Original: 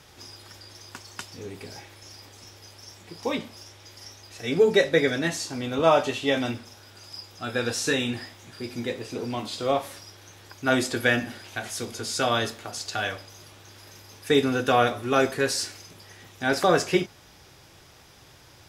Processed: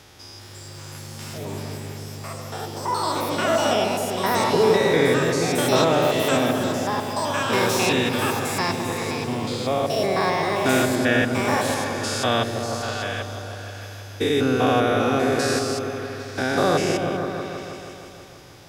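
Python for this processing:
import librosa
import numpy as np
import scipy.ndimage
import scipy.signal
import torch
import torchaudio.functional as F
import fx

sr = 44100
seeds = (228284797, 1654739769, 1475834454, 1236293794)

y = fx.spec_steps(x, sr, hold_ms=200)
y = fx.echo_opening(y, sr, ms=160, hz=400, octaves=1, feedback_pct=70, wet_db=-3)
y = fx.echo_pitch(y, sr, ms=417, semitones=7, count=2, db_per_echo=-3.0)
y = F.gain(torch.from_numpy(y), 4.5).numpy()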